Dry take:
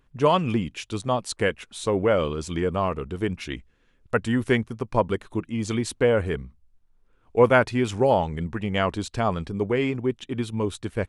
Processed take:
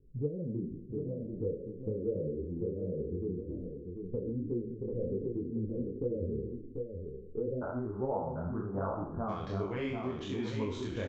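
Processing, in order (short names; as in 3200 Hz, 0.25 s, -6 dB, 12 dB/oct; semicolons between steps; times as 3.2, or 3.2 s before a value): spectral trails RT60 0.59 s; steep low-pass 510 Hz 72 dB/oct, from 7.61 s 1400 Hz, from 9.28 s 7000 Hz; harmonic-percussive split percussive -4 dB; compressor 3:1, threshold -39 dBFS, peak gain reduction 18.5 dB; echo 0.741 s -6 dB; detuned doubles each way 46 cents; gain +5.5 dB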